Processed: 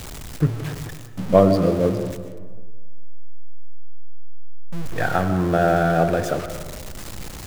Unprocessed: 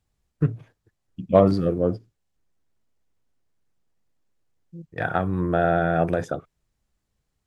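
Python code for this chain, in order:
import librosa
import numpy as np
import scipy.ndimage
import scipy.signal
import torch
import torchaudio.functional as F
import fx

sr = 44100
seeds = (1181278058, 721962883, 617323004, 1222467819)

y = x + 0.5 * 10.0 ** (-30.0 / 20.0) * np.sign(x)
y = fx.rev_freeverb(y, sr, rt60_s=1.5, hf_ratio=0.35, predelay_ms=80, drr_db=9.0)
y = y * 10.0 ** (1.5 / 20.0)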